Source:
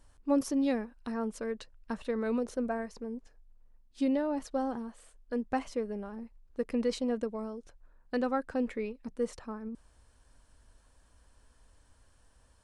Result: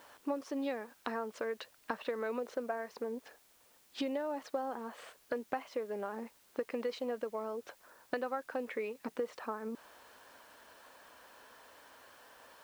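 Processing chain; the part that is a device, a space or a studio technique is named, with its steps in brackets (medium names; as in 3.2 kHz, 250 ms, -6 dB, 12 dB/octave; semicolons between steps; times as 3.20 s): baby monitor (band-pass 480–3300 Hz; compression 6:1, threshold -50 dBFS, peak gain reduction 22 dB; white noise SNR 26 dB); trim +15 dB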